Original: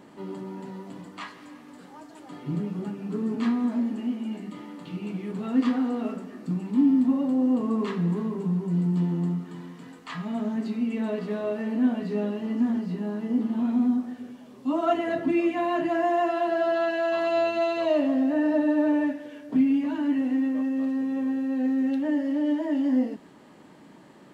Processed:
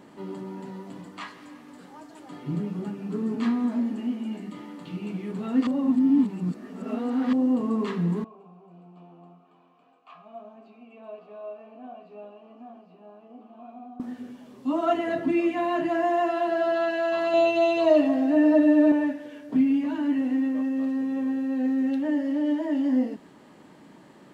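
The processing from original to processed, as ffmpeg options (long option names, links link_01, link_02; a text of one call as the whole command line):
ffmpeg -i in.wav -filter_complex "[0:a]asettb=1/sr,asplit=3[link_01][link_02][link_03];[link_01]atrim=end=8.244[link_04];[link_02]atrim=start=8.24:end=14,asetpts=PTS-STARTPTS,afade=type=in:duration=0.004:curve=qsin,afade=type=out:start_time=5.756:duration=0.004:curve=qsin,asplit=3[link_05][link_06][link_07];[link_05]bandpass=frequency=730:width_type=q:width=8,volume=0dB[link_08];[link_06]bandpass=frequency=1090:width_type=q:width=8,volume=-6dB[link_09];[link_07]bandpass=frequency=2440:width_type=q:width=8,volume=-9dB[link_10];[link_08][link_09][link_10]amix=inputs=3:normalize=0[link_11];[link_03]atrim=start=13.996[link_12];[link_04][link_11]acrossfade=duration=0.004:curve1=hsin:curve2=qsin[link_13];[link_13][link_12]acrossfade=duration=0.004:curve1=qsin:curve2=hsin,asettb=1/sr,asplit=3[link_14][link_15][link_16];[link_14]atrim=end=17.334[link_17];[link_15]atrim=start=17.33:end=18.92,asetpts=PTS-STARTPTS,afade=type=in:duration=0.004:curve=qsin,afade=type=out:start_time=1.586:duration=0.004:curve=qsin,aecho=1:1:6.3:0.88,atrim=end_sample=70119[link_18];[link_16]atrim=start=18.916[link_19];[link_17][link_18]acrossfade=duration=0.004:curve1=hsin:curve2=qsin[link_20];[link_20][link_19]acrossfade=duration=0.004:curve1=qsin:curve2=hsin,asplit=3[link_21][link_22][link_23];[link_21]atrim=end=5.672[link_24];[link_22]atrim=start=5.668:end=7.332,asetpts=PTS-STARTPTS,areverse[link_25];[link_23]atrim=start=7.328[link_26];[link_24][link_25]acrossfade=duration=0.004:curve1=hsin:curve2=hsin[link_27];[link_27][link_26]acrossfade=duration=0.004:curve1=hsin:curve2=hsin" out.wav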